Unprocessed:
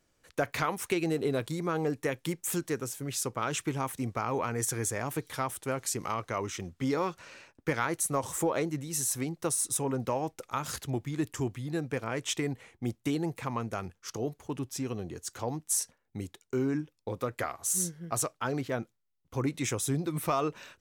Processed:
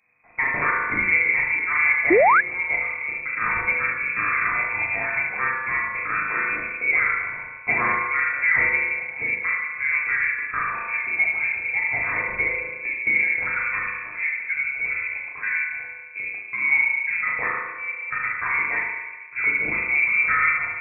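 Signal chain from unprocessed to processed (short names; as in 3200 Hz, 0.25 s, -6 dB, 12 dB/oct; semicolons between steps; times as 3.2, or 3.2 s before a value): flutter echo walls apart 6.5 m, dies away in 0.64 s; FDN reverb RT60 1.3 s, low-frequency decay 1.55×, high-frequency decay 0.65×, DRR -2.5 dB; inverted band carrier 2500 Hz; painted sound rise, 2.1–2.41, 310–1800 Hz -17 dBFS; gain +2 dB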